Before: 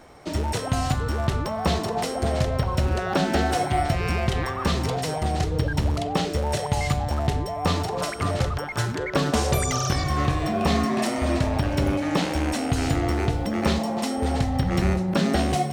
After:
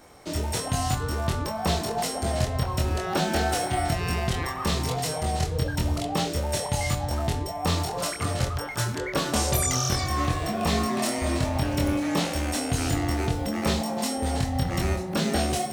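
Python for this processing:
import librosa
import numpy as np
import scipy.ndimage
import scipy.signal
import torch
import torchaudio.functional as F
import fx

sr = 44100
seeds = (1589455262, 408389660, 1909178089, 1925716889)

y = fx.high_shelf(x, sr, hz=6000.0, db=10.5)
y = fx.doubler(y, sr, ms=24.0, db=-3.0)
y = y * librosa.db_to_amplitude(-4.5)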